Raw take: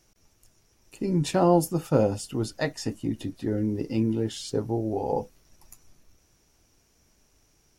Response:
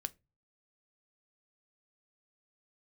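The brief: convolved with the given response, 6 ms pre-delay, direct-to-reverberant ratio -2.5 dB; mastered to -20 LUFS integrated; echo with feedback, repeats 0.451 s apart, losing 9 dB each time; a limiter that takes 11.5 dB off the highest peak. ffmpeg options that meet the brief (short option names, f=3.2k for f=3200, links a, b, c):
-filter_complex "[0:a]alimiter=limit=-19.5dB:level=0:latency=1,aecho=1:1:451|902|1353|1804:0.355|0.124|0.0435|0.0152,asplit=2[a][b];[1:a]atrim=start_sample=2205,adelay=6[c];[b][c]afir=irnorm=-1:irlink=0,volume=4dB[d];[a][d]amix=inputs=2:normalize=0,volume=5.5dB"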